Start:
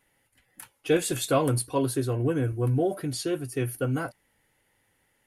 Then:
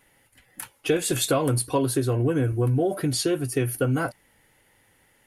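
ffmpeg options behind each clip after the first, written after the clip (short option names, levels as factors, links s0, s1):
-af "acompressor=threshold=0.0398:ratio=4,volume=2.51"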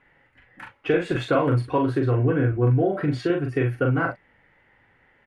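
-filter_complex "[0:a]lowpass=f=1900:t=q:w=1.5,asplit=2[s0][s1];[s1]adelay=41,volume=0.631[s2];[s0][s2]amix=inputs=2:normalize=0"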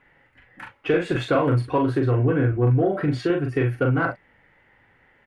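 -af "asoftclip=type=tanh:threshold=0.299,volume=1.19"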